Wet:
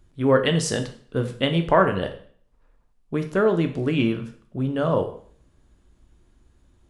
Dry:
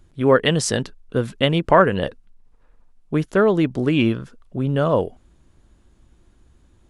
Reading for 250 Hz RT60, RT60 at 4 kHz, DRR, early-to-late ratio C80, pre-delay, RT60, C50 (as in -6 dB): 0.60 s, 0.50 s, 6.5 dB, 15.0 dB, 5 ms, 0.50 s, 11.0 dB